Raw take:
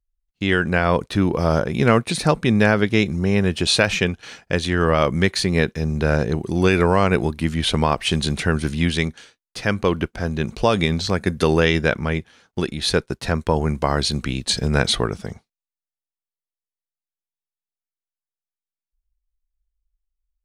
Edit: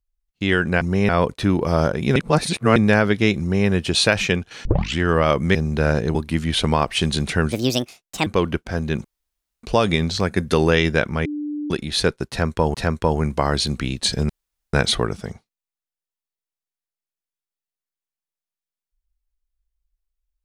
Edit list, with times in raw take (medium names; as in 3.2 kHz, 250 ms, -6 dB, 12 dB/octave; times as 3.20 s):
1.88–2.48 s: reverse
3.12–3.40 s: copy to 0.81 s
4.37 s: tape start 0.34 s
5.27–5.79 s: delete
6.39–7.25 s: delete
8.62–9.75 s: speed 152%
10.53 s: insert room tone 0.59 s
12.15–12.60 s: bleep 296 Hz -24 dBFS
13.19–13.64 s: loop, 2 plays
14.74 s: insert room tone 0.44 s